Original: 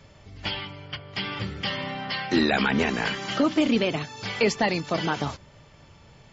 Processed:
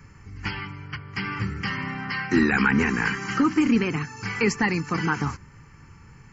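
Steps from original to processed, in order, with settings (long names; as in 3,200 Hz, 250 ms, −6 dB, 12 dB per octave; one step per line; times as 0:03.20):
phaser with its sweep stopped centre 1,500 Hz, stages 4
level +5 dB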